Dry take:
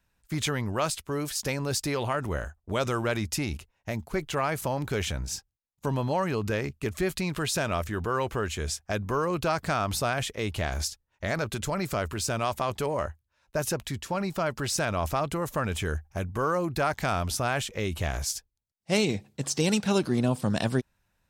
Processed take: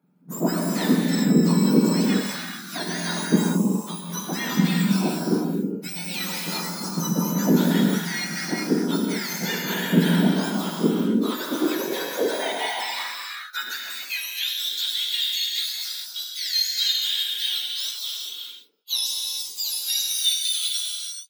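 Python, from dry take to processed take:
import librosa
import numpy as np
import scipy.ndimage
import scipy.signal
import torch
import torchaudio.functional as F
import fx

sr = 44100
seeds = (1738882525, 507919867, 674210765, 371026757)

y = fx.octave_mirror(x, sr, pivot_hz=1500.0)
y = fx.rev_gated(y, sr, seeds[0], gate_ms=460, shape='flat', drr_db=-2.0)
y = fx.filter_sweep_highpass(y, sr, from_hz=180.0, to_hz=3600.0, start_s=10.92, end_s=14.7, q=4.1)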